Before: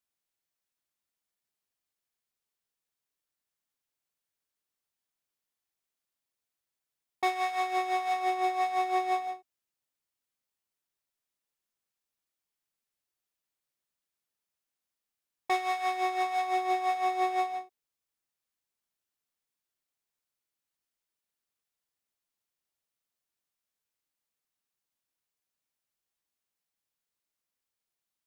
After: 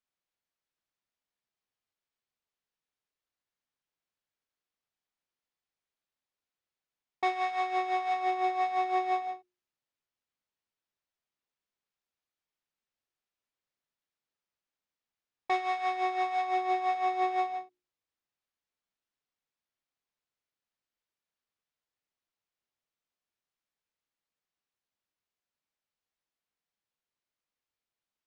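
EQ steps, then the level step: air absorption 110 m; notches 60/120/180/240/300/360 Hz; 0.0 dB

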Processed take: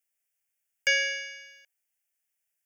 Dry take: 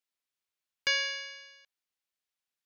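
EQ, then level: high shelf 2700 Hz +11 dB; dynamic EQ 650 Hz, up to +6 dB, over -42 dBFS, Q 0.81; fixed phaser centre 1100 Hz, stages 6; +1.5 dB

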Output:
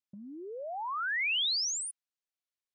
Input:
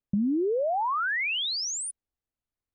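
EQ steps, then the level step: band-pass 4100 Hz, Q 0.61; 0.0 dB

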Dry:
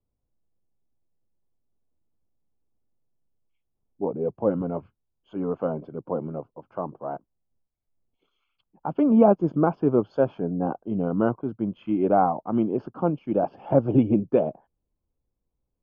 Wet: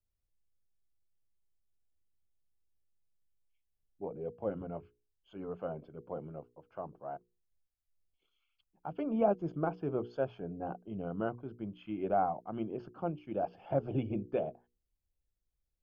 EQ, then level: notches 60/120/180/240/300/360/420/480 Hz; dynamic EQ 710 Hz, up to +4 dB, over -38 dBFS, Q 5.5; graphic EQ 125/250/500/1000 Hz -5/-11/-5/-10 dB; -3.0 dB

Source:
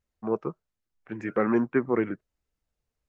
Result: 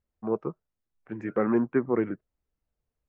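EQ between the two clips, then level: high shelf 2100 Hz -11 dB; 0.0 dB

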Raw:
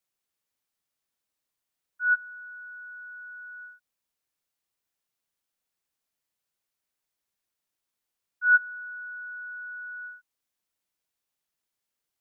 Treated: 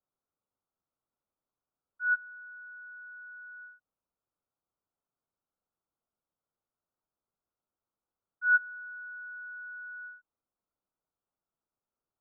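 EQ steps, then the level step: elliptic low-pass 1400 Hz; air absorption 450 m; +2.5 dB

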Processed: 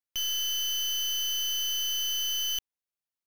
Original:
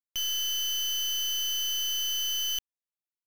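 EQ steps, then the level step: notch 7600 Hz, Q 12; 0.0 dB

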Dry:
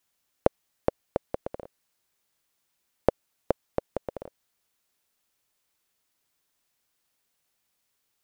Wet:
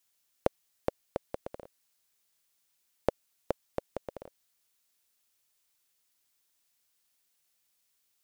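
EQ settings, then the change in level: high shelf 2300 Hz +9 dB; -6.5 dB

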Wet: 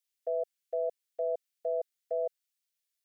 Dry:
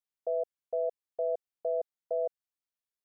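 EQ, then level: tilt shelf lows -9 dB, about 660 Hz; dynamic EQ 850 Hz, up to +7 dB, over -47 dBFS, Q 1.1; fixed phaser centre 380 Hz, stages 4; 0.0 dB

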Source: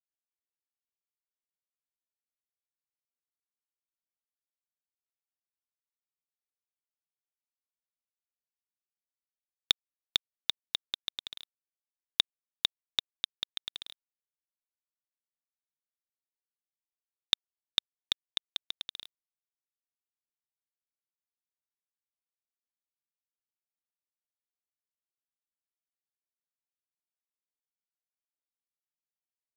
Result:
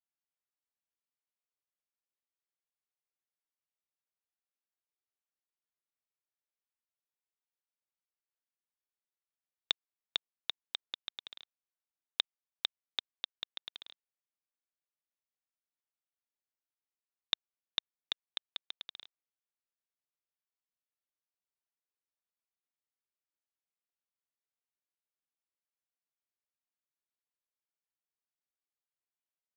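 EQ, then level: BPF 110–5700 Hz; low shelf 220 Hz -11.5 dB; high shelf 4300 Hz -10 dB; -1.5 dB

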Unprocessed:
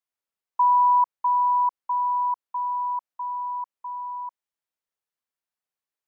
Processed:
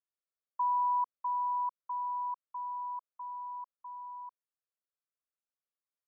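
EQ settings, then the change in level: Butterworth band-pass 810 Hz, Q 0.8; fixed phaser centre 830 Hz, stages 6; -5.0 dB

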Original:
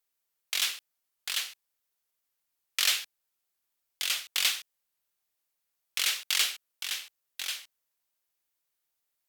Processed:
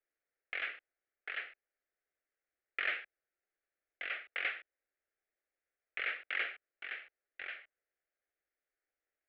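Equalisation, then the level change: steep low-pass 2000 Hz 36 dB/oct; low shelf 450 Hz -9.5 dB; fixed phaser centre 410 Hz, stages 4; +7.5 dB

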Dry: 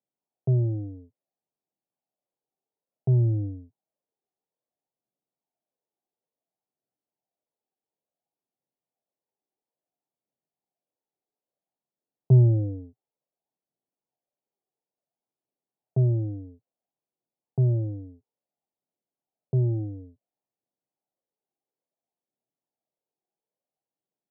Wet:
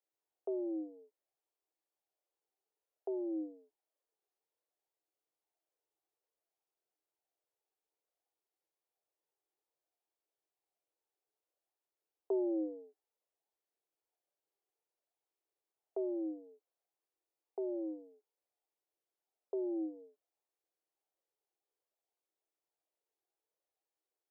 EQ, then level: rippled Chebyshev high-pass 310 Hz, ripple 3 dB; 0.0 dB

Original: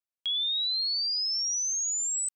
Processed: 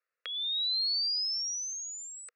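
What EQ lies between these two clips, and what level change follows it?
speaker cabinet 430–4400 Hz, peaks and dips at 480 Hz +10 dB, 1300 Hz +8 dB, 1900 Hz +8 dB, 2800 Hz +10 dB; fixed phaser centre 860 Hz, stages 6; +8.5 dB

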